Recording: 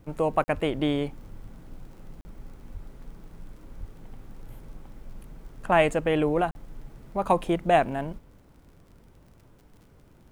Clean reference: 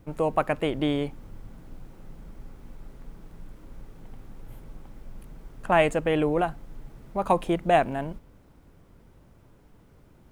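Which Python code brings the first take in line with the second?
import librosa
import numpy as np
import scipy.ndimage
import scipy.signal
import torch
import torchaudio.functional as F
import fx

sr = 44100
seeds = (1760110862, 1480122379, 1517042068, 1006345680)

y = fx.fix_declick_ar(x, sr, threshold=6.5)
y = fx.fix_deplosive(y, sr, at_s=(0.53, 2.73, 3.79))
y = fx.fix_interpolate(y, sr, at_s=(0.44, 2.21, 6.51), length_ms=40.0)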